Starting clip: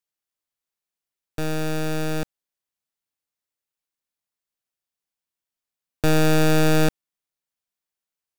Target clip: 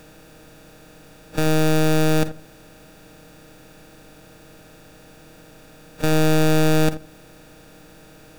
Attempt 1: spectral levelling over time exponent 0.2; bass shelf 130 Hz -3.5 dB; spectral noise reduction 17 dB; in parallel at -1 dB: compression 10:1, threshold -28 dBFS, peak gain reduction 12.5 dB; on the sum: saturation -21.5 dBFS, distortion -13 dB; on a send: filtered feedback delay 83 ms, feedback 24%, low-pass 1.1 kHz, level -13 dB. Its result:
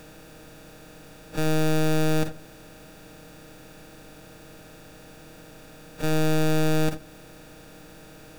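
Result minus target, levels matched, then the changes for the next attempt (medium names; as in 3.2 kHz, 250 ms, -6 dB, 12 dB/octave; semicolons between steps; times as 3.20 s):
saturation: distortion +8 dB
change: saturation -13 dBFS, distortion -22 dB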